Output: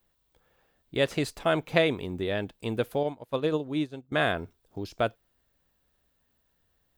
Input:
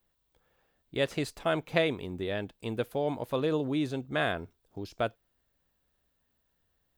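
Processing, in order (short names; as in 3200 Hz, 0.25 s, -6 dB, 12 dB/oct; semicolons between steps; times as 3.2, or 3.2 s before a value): 3.03–4.12 upward expander 2.5:1, over -38 dBFS; gain +3.5 dB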